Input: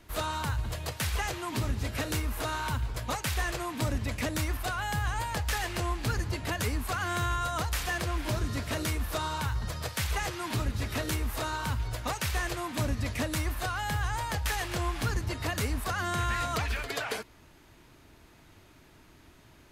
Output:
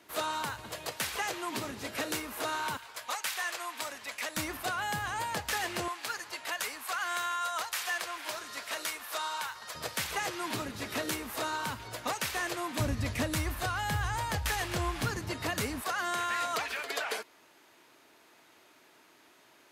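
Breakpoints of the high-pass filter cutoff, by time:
280 Hz
from 0:02.77 840 Hz
from 0:04.37 200 Hz
from 0:05.88 790 Hz
from 0:09.75 230 Hz
from 0:12.80 66 Hz
from 0:15.05 140 Hz
from 0:15.82 410 Hz

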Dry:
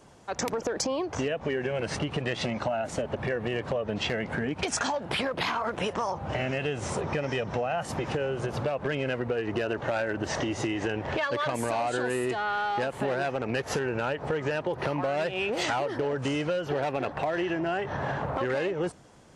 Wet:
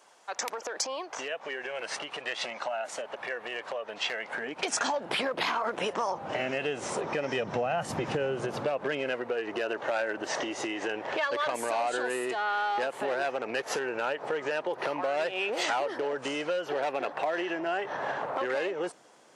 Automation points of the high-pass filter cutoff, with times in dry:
0:04.25 730 Hz
0:04.84 270 Hz
0:07.19 270 Hz
0:07.81 98 Hz
0:09.26 400 Hz

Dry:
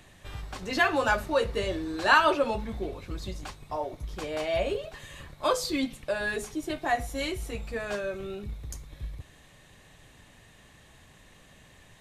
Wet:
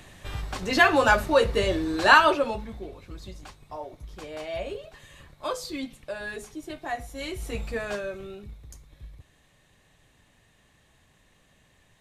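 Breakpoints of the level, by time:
0:02.07 +5.5 dB
0:02.82 −5 dB
0:07.16 −5 dB
0:07.60 +4.5 dB
0:08.64 −7 dB

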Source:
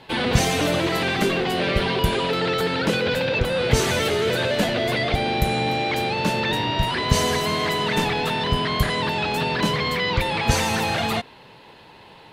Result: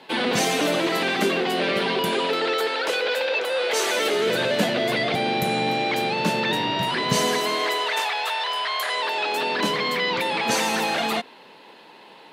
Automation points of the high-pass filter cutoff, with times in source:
high-pass filter 24 dB per octave
0:02.13 200 Hz
0:02.79 430 Hz
0:03.80 430 Hz
0:04.39 150 Hz
0:07.14 150 Hz
0:08.06 630 Hz
0:08.80 630 Hz
0:09.70 210 Hz

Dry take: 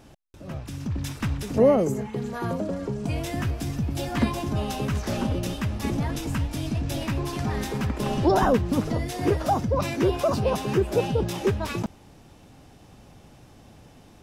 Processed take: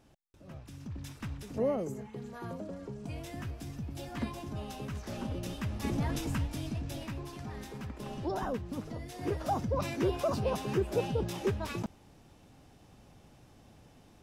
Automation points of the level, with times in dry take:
0:05.07 −12.5 dB
0:06.16 −4 dB
0:07.40 −14.5 dB
0:08.98 −14.5 dB
0:09.60 −7.5 dB

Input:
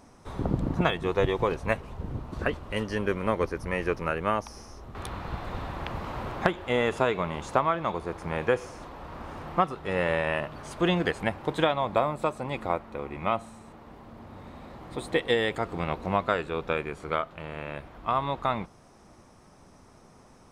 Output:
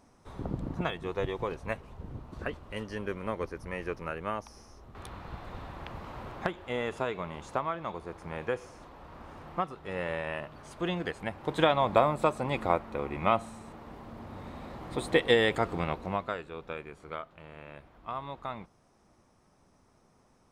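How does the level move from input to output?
0:11.27 −7.5 dB
0:11.73 +1.5 dB
0:15.66 +1.5 dB
0:16.45 −10.5 dB

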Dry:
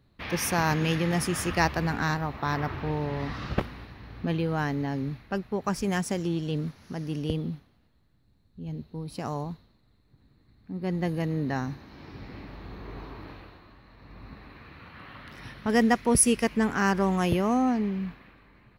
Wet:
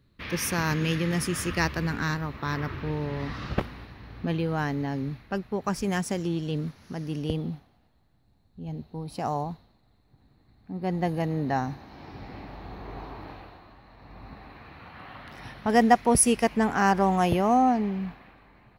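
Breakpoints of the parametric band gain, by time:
parametric band 760 Hz 0.58 octaves
0:02.81 −9 dB
0:03.58 +0.5 dB
0:07.13 +0.5 dB
0:07.54 +9 dB

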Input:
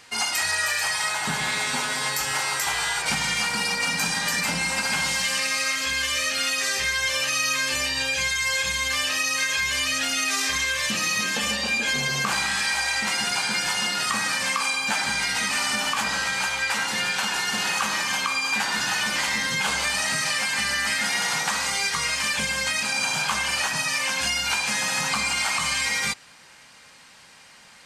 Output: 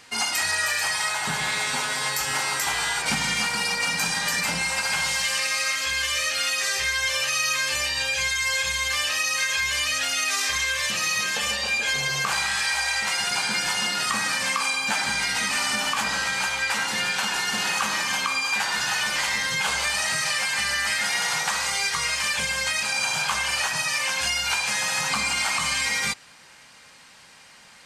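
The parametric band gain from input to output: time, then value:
parametric band 240 Hz 0.84 octaves
+2.5 dB
from 0:01.02 −4.5 dB
from 0:02.28 +4 dB
from 0:03.47 −4.5 dB
from 0:04.62 −12.5 dB
from 0:13.31 −1 dB
from 0:18.43 −9 dB
from 0:25.10 −0.5 dB

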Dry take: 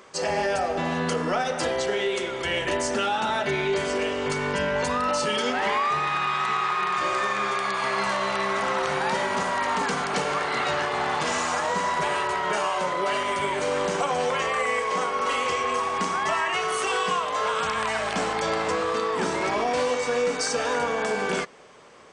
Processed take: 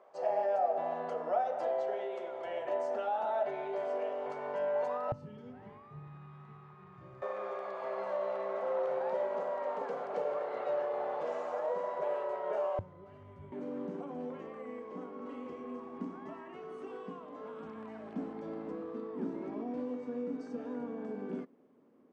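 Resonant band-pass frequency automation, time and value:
resonant band-pass, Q 4.6
670 Hz
from 0:05.12 120 Hz
from 0:07.22 550 Hz
from 0:12.79 100 Hz
from 0:13.52 260 Hz

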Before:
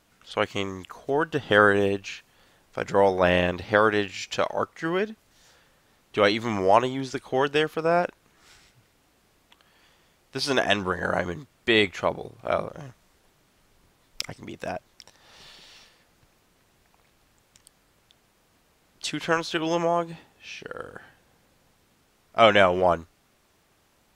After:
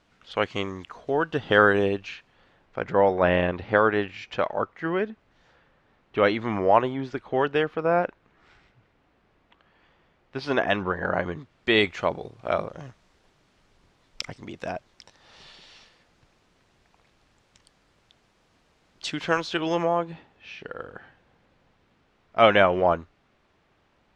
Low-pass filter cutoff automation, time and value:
0:01.79 4,500 Hz
0:02.82 2,400 Hz
0:11.08 2,400 Hz
0:11.91 5,800 Hz
0:19.51 5,800 Hz
0:20.01 3,200 Hz

